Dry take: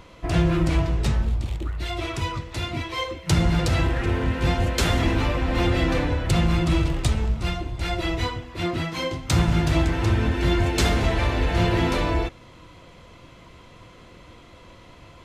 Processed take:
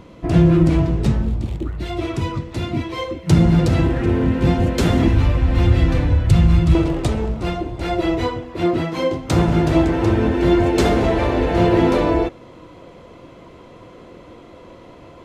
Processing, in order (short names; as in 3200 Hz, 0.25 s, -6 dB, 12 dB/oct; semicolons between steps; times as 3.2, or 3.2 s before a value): bell 230 Hz +13 dB 2.8 oct, from 5.08 s 82 Hz, from 6.75 s 410 Hz; gain -2.5 dB